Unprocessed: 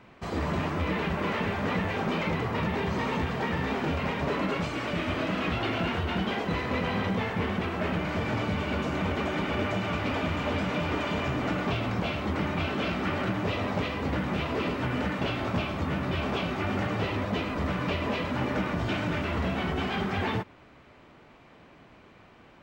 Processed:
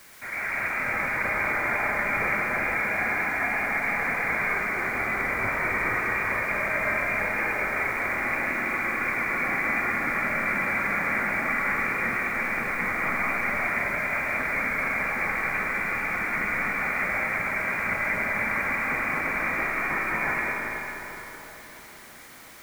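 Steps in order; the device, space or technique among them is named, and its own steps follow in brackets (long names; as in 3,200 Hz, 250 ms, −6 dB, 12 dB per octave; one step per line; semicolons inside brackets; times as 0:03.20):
scrambled radio voice (band-pass filter 320–3,000 Hz; voice inversion scrambler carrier 2,600 Hz; white noise bed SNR 20 dB)
comb and all-pass reverb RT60 4.5 s, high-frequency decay 0.4×, pre-delay 70 ms, DRR −2.5 dB
level +1.5 dB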